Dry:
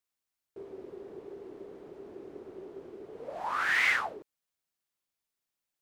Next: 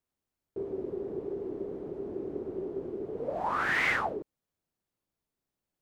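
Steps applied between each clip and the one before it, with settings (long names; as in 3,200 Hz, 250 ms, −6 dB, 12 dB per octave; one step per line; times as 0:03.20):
tilt shelving filter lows +8.5 dB, about 820 Hz
level +4 dB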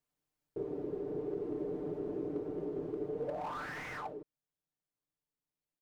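speech leveller within 5 dB 0.5 s
comb filter 6.7 ms, depth 75%
slew-rate limiting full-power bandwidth 27 Hz
level −6 dB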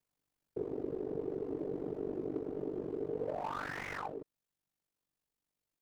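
speech leveller 2 s
ring modulation 24 Hz
level +3 dB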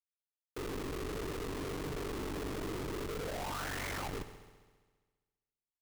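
comparator with hysteresis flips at −44.5 dBFS
on a send: echo machine with several playback heads 67 ms, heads first and second, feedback 61%, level −17 dB
on the sum: level +2 dB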